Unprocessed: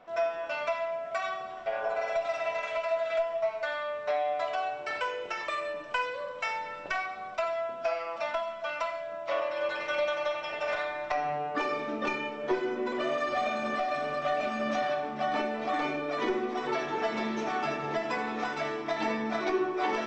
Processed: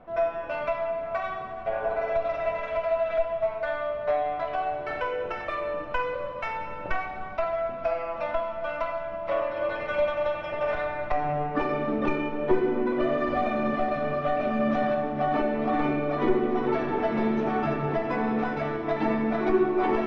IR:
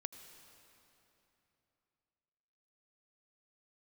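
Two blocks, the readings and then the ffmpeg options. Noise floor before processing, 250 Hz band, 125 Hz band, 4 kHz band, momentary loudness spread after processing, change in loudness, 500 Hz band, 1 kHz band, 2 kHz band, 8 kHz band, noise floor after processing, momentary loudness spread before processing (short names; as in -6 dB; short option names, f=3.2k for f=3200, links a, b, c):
-40 dBFS, +8.5 dB, +12.5 dB, -5.0 dB, 6 LU, +4.0 dB, +4.5 dB, +2.5 dB, -0.5 dB, n/a, -36 dBFS, 4 LU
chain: -filter_complex "[0:a]aemphasis=mode=reproduction:type=riaa,adynamicsmooth=sensitivity=2:basefreq=5.2k[a];[1:a]atrim=start_sample=2205[b];[a][b]afir=irnorm=-1:irlink=0,volume=5.5dB"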